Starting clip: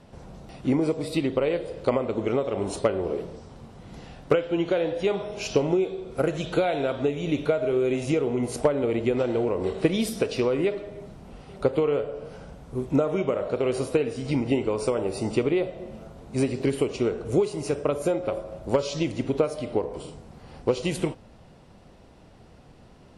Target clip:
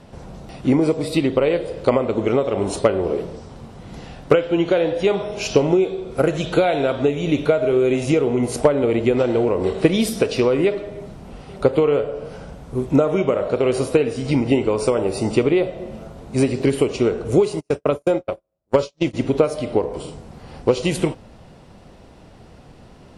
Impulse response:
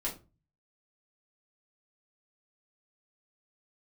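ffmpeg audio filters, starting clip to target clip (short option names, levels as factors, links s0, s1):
-filter_complex "[0:a]asplit=3[s0][s1][s2];[s0]afade=t=out:st=17.59:d=0.02[s3];[s1]agate=range=0.00447:threshold=0.0562:ratio=16:detection=peak,afade=t=in:st=17.59:d=0.02,afade=t=out:st=19.13:d=0.02[s4];[s2]afade=t=in:st=19.13:d=0.02[s5];[s3][s4][s5]amix=inputs=3:normalize=0,volume=2.11"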